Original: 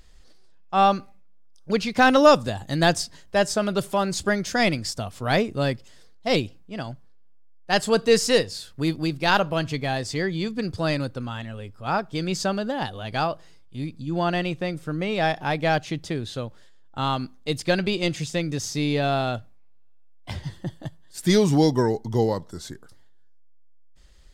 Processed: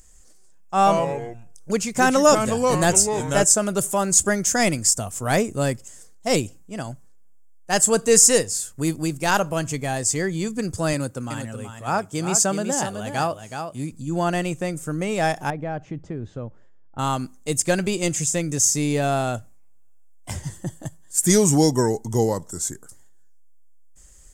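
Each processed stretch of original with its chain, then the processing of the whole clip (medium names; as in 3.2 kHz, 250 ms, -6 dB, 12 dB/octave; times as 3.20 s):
0.76–3.44 s: de-esser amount 30% + ever faster or slower copies 102 ms, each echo -3 st, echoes 3, each echo -6 dB
10.93–13.92 s: high-pass 94 Hz + delay 374 ms -7.5 dB
15.50–16.99 s: tape spacing loss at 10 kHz 45 dB + compression 2.5:1, threshold -28 dBFS
whole clip: level rider gain up to 3.5 dB; resonant high shelf 5.5 kHz +11 dB, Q 3; trim -2 dB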